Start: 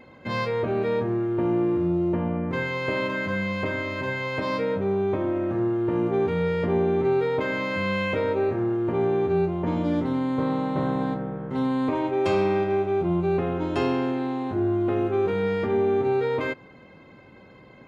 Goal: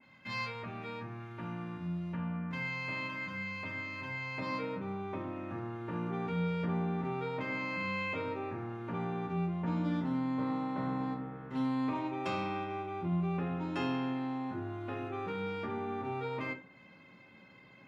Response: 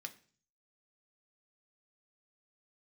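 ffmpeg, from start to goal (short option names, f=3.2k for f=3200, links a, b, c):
-filter_complex "[0:a]asetnsamples=n=441:p=0,asendcmd='4.38 equalizer g -7',equalizer=f=410:t=o:w=1.9:g=-15[a];[1:a]atrim=start_sample=2205,atrim=end_sample=6615[b];[a][b]afir=irnorm=-1:irlink=0,adynamicequalizer=threshold=0.00316:dfrequency=1900:dqfactor=0.7:tfrequency=1900:tqfactor=0.7:attack=5:release=100:ratio=0.375:range=3:mode=cutabove:tftype=highshelf"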